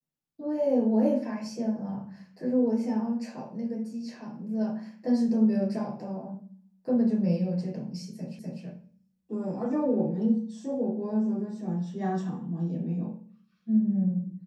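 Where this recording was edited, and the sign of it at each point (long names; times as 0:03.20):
0:08.39: the same again, the last 0.25 s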